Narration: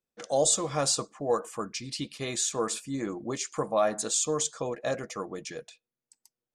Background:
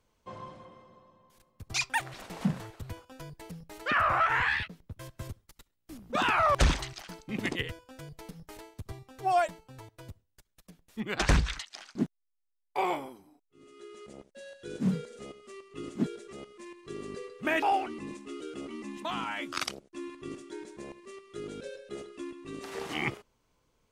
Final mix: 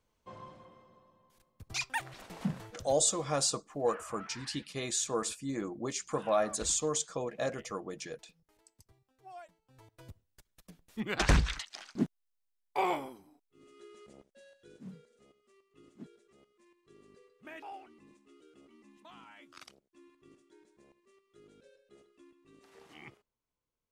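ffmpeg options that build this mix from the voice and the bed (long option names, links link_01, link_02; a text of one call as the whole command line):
ffmpeg -i stem1.wav -i stem2.wav -filter_complex "[0:a]adelay=2550,volume=-3.5dB[link_01];[1:a]volume=17.5dB,afade=type=out:start_time=2.65:duration=0.59:silence=0.11885,afade=type=in:start_time=9.6:duration=0.77:silence=0.0749894,afade=type=out:start_time=13.05:duration=1.79:silence=0.11885[link_02];[link_01][link_02]amix=inputs=2:normalize=0" out.wav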